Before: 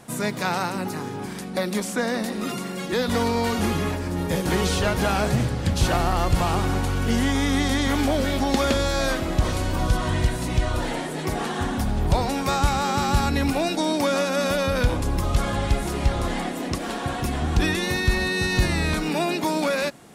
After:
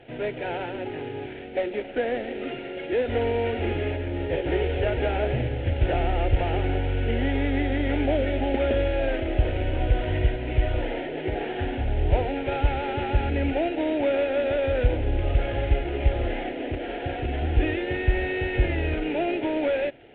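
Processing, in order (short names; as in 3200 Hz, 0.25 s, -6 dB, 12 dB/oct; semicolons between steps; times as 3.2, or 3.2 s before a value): CVSD 16 kbps; fixed phaser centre 460 Hz, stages 4; added harmonics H 2 -26 dB, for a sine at -10.5 dBFS; gain +2.5 dB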